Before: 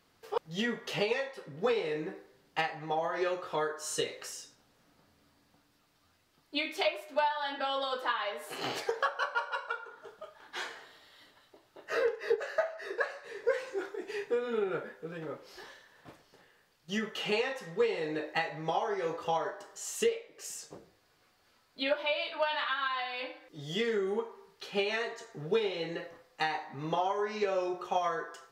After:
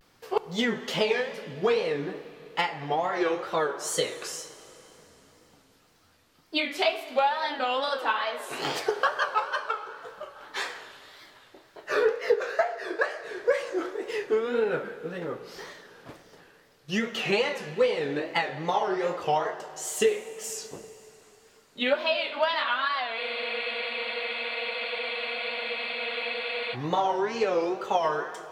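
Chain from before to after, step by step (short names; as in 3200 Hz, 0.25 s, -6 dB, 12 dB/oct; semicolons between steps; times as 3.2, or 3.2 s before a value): in parallel at -1.5 dB: vocal rider within 3 dB 2 s; on the sum: wow and flutter 150 cents; plate-style reverb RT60 3.7 s, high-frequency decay 0.95×, DRR 13 dB; spectral freeze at 23.2, 3.54 s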